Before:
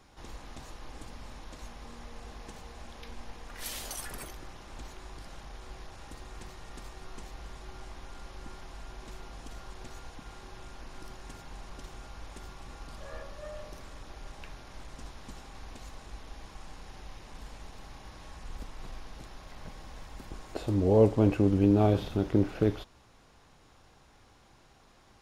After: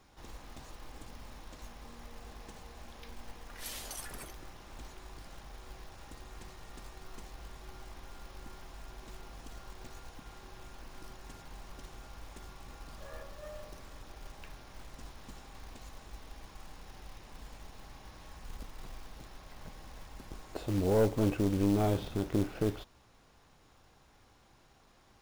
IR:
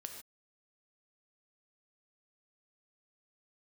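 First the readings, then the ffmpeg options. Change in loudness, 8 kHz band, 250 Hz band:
−8.0 dB, −2.0 dB, −5.0 dB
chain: -af "acrusher=bits=4:mode=log:mix=0:aa=0.000001,aeval=exprs='(tanh(7.08*val(0)+0.35)-tanh(0.35))/7.08':channel_layout=same,volume=-2.5dB"

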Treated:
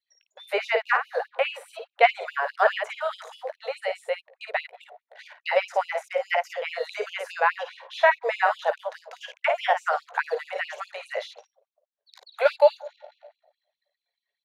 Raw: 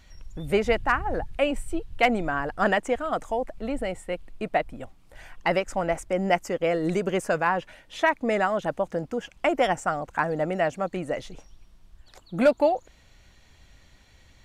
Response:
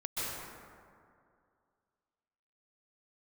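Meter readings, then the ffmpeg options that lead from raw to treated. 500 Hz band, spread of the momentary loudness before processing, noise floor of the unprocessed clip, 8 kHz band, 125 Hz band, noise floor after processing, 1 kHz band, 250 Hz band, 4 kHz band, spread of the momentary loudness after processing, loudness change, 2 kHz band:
−0.5 dB, 10 LU, −56 dBFS, can't be measured, below −40 dB, below −85 dBFS, +1.0 dB, below −25 dB, +2.0 dB, 15 LU, 0.0 dB, +2.5 dB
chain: -filter_complex "[0:a]asplit=2[link_01][link_02];[1:a]atrim=start_sample=2205,lowpass=1300,adelay=47[link_03];[link_02][link_03]afir=irnorm=-1:irlink=0,volume=-26.5dB[link_04];[link_01][link_04]amix=inputs=2:normalize=0,anlmdn=0.0158,aecho=1:1:17|53:0.237|0.422,acrossover=split=2700[link_05][link_06];[link_06]acompressor=threshold=-50dB:ratio=4:attack=1:release=60[link_07];[link_05][link_07]amix=inputs=2:normalize=0,equalizer=frequency=250:width_type=o:width=0.33:gain=8,equalizer=frequency=1250:width_type=o:width=0.33:gain=-4,equalizer=frequency=4000:width_type=o:width=0.33:gain=10,equalizer=frequency=8000:width_type=o:width=0.33:gain=-10,afftfilt=real='re*gte(b*sr/1024,390*pow(2500/390,0.5+0.5*sin(2*PI*4.8*pts/sr)))':imag='im*gte(b*sr/1024,390*pow(2500/390,0.5+0.5*sin(2*PI*4.8*pts/sr)))':win_size=1024:overlap=0.75,volume=4.5dB"

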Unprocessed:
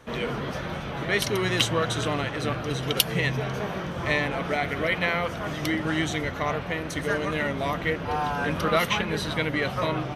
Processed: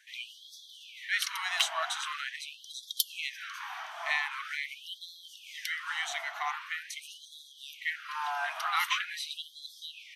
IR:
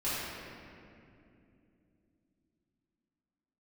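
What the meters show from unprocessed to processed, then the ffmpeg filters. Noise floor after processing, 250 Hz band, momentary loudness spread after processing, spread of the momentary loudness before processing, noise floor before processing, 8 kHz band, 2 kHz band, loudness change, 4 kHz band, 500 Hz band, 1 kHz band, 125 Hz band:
−54 dBFS, below −40 dB, 17 LU, 7 LU, −34 dBFS, −4.0 dB, −6.0 dB, −7.5 dB, −4.5 dB, −22.5 dB, −7.0 dB, below −40 dB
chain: -filter_complex "[0:a]acrossover=split=110|450|2000[link_01][link_02][link_03][link_04];[link_04]aeval=exprs='clip(val(0),-1,0.141)':channel_layout=same[link_05];[link_01][link_02][link_03][link_05]amix=inputs=4:normalize=0,afftfilt=real='re*gte(b*sr/1024,610*pow(3300/610,0.5+0.5*sin(2*PI*0.44*pts/sr)))':imag='im*gte(b*sr/1024,610*pow(3300/610,0.5+0.5*sin(2*PI*0.44*pts/sr)))':win_size=1024:overlap=0.75,volume=-3.5dB"

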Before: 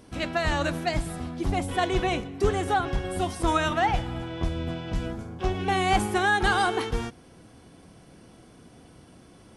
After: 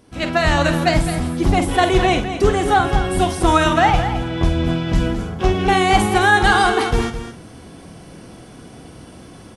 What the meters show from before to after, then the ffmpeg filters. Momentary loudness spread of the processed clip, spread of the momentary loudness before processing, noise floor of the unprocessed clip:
8 LU, 9 LU, −52 dBFS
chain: -filter_complex "[0:a]dynaudnorm=framelen=140:gausssize=3:maxgain=12dB,asplit=2[link_01][link_02];[link_02]adelay=48,volume=-10dB[link_03];[link_01][link_03]amix=inputs=2:normalize=0,asplit=2[link_04][link_05];[link_05]aecho=0:1:213:0.316[link_06];[link_04][link_06]amix=inputs=2:normalize=0,volume=-1dB"

